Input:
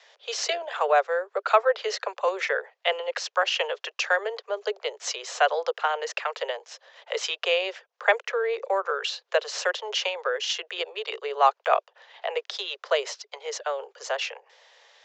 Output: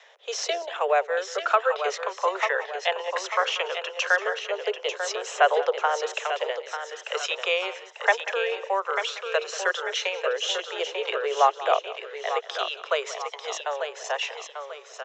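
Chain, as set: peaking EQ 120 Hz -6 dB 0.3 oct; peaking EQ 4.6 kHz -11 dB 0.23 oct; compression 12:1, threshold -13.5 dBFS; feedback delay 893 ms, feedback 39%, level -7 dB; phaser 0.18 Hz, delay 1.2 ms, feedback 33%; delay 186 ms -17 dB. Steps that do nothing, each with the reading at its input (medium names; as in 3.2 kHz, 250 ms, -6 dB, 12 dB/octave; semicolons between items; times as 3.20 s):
peaking EQ 120 Hz: input has nothing below 340 Hz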